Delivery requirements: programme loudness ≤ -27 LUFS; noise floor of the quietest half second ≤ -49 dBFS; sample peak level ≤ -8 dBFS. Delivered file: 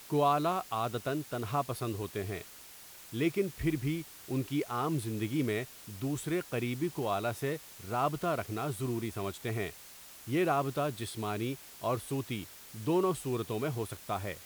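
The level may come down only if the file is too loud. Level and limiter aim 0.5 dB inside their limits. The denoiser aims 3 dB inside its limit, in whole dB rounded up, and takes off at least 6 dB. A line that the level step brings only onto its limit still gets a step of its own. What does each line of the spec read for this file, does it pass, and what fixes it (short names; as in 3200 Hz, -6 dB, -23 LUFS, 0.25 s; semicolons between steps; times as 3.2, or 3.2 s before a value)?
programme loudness -34.0 LUFS: OK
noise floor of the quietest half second -51 dBFS: OK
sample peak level -16.0 dBFS: OK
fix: none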